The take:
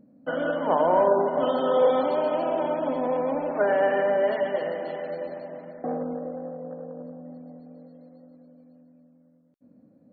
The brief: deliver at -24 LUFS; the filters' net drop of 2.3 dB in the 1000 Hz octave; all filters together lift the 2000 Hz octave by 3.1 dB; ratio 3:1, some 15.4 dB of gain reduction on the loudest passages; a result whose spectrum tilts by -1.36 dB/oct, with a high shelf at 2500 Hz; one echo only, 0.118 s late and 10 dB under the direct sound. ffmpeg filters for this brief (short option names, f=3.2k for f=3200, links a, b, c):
-af "equalizer=f=1k:t=o:g=-3.5,equalizer=f=2k:t=o:g=9,highshelf=f=2.5k:g=-8.5,acompressor=threshold=-39dB:ratio=3,aecho=1:1:118:0.316,volume=14.5dB"